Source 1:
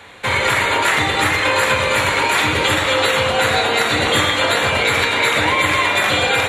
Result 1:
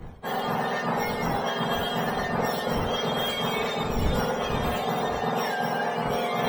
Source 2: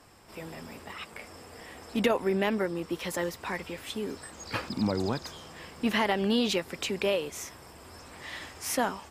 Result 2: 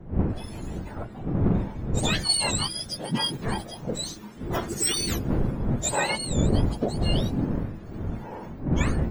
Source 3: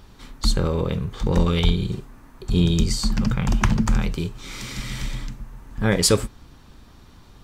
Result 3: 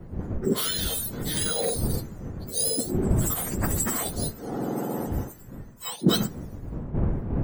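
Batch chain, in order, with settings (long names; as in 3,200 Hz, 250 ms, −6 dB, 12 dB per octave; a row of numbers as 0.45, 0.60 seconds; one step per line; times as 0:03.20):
frequency axis turned over on the octave scale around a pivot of 1,300 Hz
wind on the microphone 210 Hz −28 dBFS
reversed playback
downward compressor 4 to 1, threshold −28 dBFS
reversed playback
multiband upward and downward expander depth 70%
loudness normalisation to −27 LKFS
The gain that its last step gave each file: +2.0, +6.5, +4.0 decibels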